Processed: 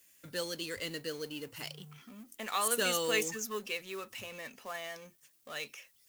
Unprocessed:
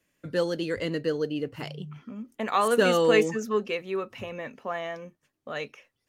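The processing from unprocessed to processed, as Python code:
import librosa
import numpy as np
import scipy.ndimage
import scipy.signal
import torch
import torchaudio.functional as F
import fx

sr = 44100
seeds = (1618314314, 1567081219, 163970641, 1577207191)

y = fx.law_mismatch(x, sr, coded='mu')
y = librosa.effects.preemphasis(y, coef=0.9, zi=[0.0])
y = y * 10.0 ** (5.0 / 20.0)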